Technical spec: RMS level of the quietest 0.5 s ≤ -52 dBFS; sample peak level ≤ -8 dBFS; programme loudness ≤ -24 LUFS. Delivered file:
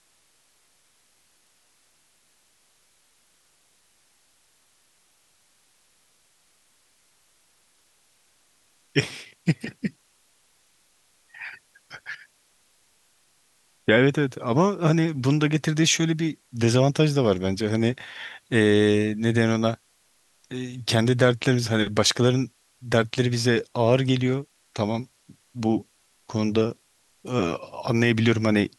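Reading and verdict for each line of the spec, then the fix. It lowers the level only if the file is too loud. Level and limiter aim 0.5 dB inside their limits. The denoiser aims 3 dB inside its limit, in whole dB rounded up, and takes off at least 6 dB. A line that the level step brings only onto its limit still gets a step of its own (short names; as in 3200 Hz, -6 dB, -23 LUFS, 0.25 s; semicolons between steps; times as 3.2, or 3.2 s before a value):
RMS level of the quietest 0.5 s -64 dBFS: OK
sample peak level -3.5 dBFS: fail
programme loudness -23.0 LUFS: fail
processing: gain -1.5 dB; limiter -8.5 dBFS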